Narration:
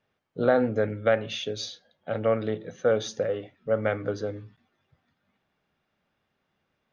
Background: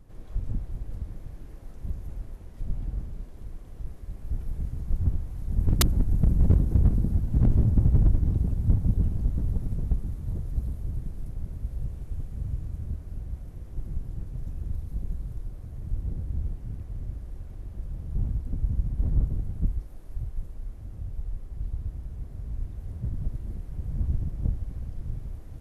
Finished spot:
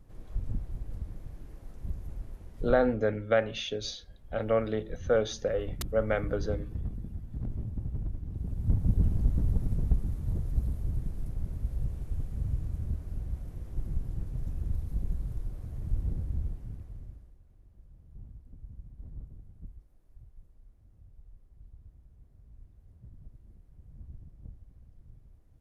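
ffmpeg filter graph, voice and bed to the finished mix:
ffmpeg -i stem1.wav -i stem2.wav -filter_complex "[0:a]adelay=2250,volume=-2.5dB[link_01];[1:a]volume=11.5dB,afade=type=out:start_time=2.69:duration=0.29:silence=0.266073,afade=type=in:start_time=8.29:duration=0.82:silence=0.188365,afade=type=out:start_time=16.03:duration=1.33:silence=0.105925[link_02];[link_01][link_02]amix=inputs=2:normalize=0" out.wav

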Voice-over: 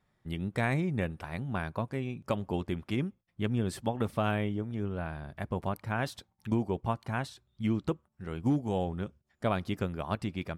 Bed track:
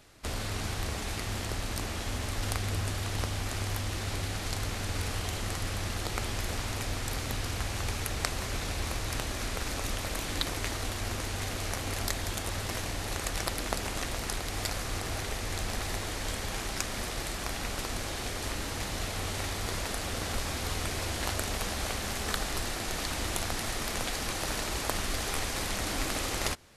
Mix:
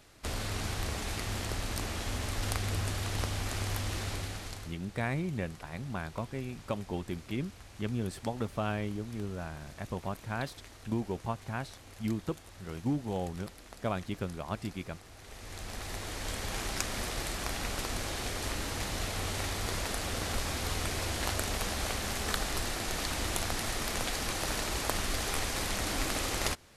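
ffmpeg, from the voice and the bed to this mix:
ffmpeg -i stem1.wav -i stem2.wav -filter_complex "[0:a]adelay=4400,volume=-3.5dB[link_01];[1:a]volume=16.5dB,afade=type=out:start_time=3.98:duration=0.8:silence=0.141254,afade=type=in:start_time=15.17:duration=1.48:silence=0.133352[link_02];[link_01][link_02]amix=inputs=2:normalize=0" out.wav

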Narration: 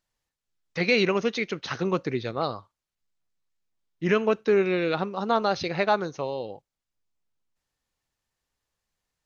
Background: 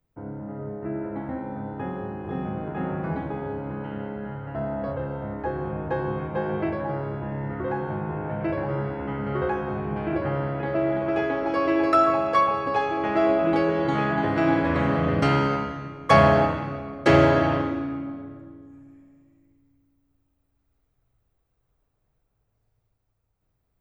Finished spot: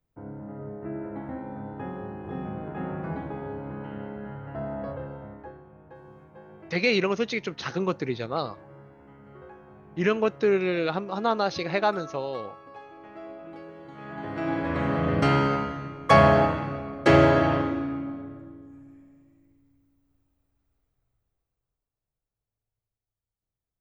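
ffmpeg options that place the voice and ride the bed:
ffmpeg -i stem1.wav -i stem2.wav -filter_complex "[0:a]adelay=5950,volume=-1dB[link_01];[1:a]volume=16.5dB,afade=type=out:start_time=4.81:duration=0.83:silence=0.141254,afade=type=in:start_time=13.96:duration=1.32:silence=0.0944061,afade=type=out:start_time=20.23:duration=1.61:silence=0.158489[link_02];[link_01][link_02]amix=inputs=2:normalize=0" out.wav

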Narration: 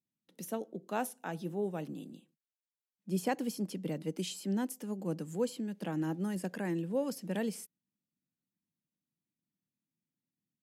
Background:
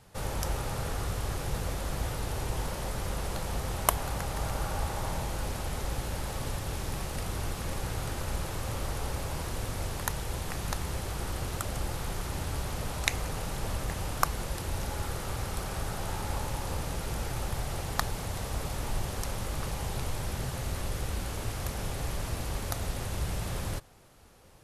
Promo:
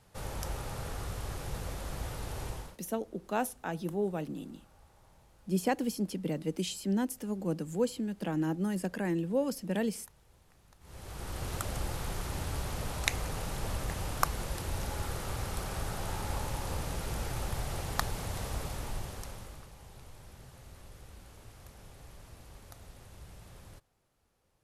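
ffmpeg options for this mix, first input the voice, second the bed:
ffmpeg -i stem1.wav -i stem2.wav -filter_complex "[0:a]adelay=2400,volume=3dB[link_01];[1:a]volume=21dB,afade=type=out:start_time=2.47:duration=0.31:silence=0.0707946,afade=type=in:start_time=10.8:duration=0.74:silence=0.0473151,afade=type=out:start_time=18.45:duration=1.23:silence=0.158489[link_02];[link_01][link_02]amix=inputs=2:normalize=0" out.wav

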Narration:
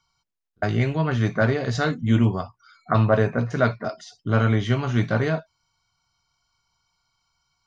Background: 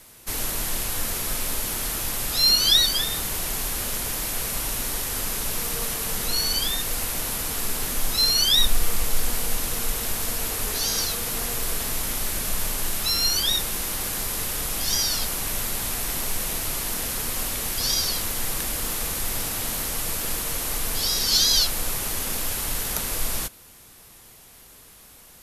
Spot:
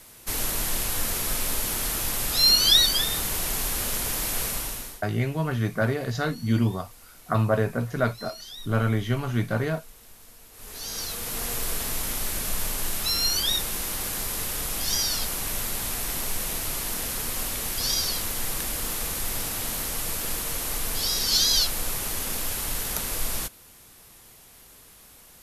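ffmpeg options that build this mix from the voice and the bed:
ffmpeg -i stem1.wav -i stem2.wav -filter_complex "[0:a]adelay=4400,volume=-4dB[link_01];[1:a]volume=21dB,afade=type=out:start_time=4.43:duration=0.59:silence=0.0707946,afade=type=in:start_time=10.52:duration=1:silence=0.0891251[link_02];[link_01][link_02]amix=inputs=2:normalize=0" out.wav

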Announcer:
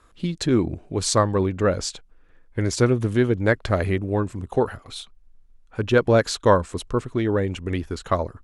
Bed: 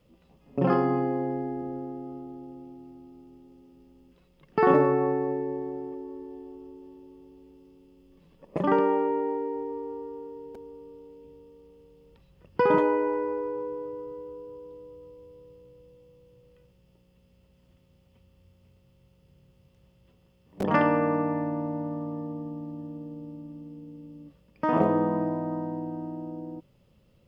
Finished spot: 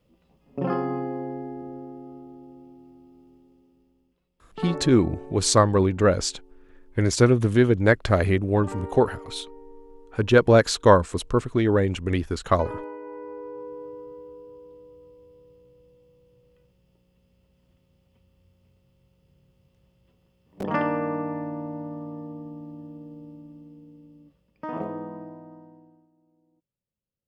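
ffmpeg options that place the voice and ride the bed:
ffmpeg -i stem1.wav -i stem2.wav -filter_complex "[0:a]adelay=4400,volume=1.5dB[link_01];[1:a]volume=8dB,afade=type=out:start_time=3.3:duration=0.88:silence=0.298538,afade=type=in:start_time=13.01:duration=0.86:silence=0.281838,afade=type=out:start_time=23.27:duration=2.82:silence=0.0398107[link_02];[link_01][link_02]amix=inputs=2:normalize=0" out.wav

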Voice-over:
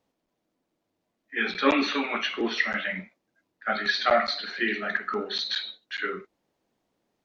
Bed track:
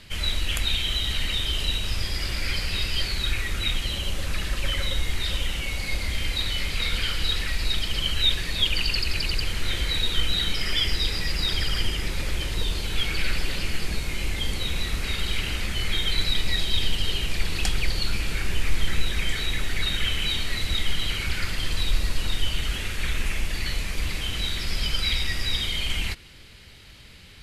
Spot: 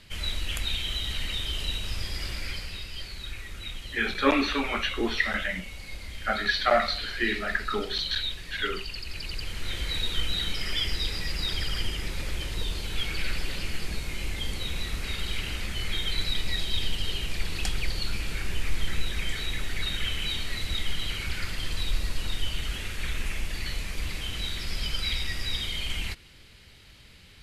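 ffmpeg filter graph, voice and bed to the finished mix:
ffmpeg -i stem1.wav -i stem2.wav -filter_complex "[0:a]adelay=2600,volume=-0.5dB[link_01];[1:a]volume=2.5dB,afade=type=out:start_time=2.27:duration=0.56:silence=0.446684,afade=type=in:start_time=9.02:duration=0.95:silence=0.421697[link_02];[link_01][link_02]amix=inputs=2:normalize=0" out.wav

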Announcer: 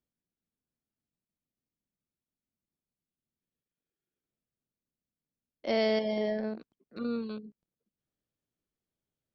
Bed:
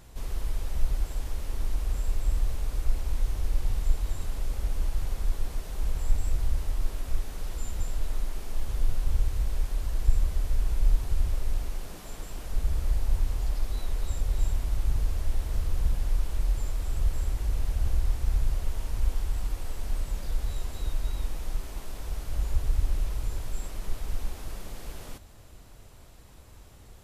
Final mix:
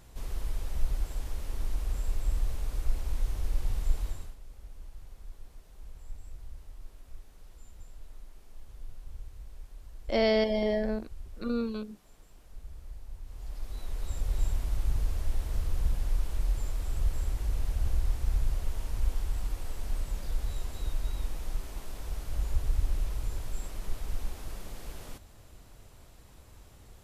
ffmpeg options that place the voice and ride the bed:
ffmpeg -i stem1.wav -i stem2.wav -filter_complex "[0:a]adelay=4450,volume=2.5dB[link_01];[1:a]volume=12.5dB,afade=type=out:start_time=4.02:duration=0.34:silence=0.177828,afade=type=in:start_time=13.23:duration=1.12:silence=0.16788[link_02];[link_01][link_02]amix=inputs=2:normalize=0" out.wav

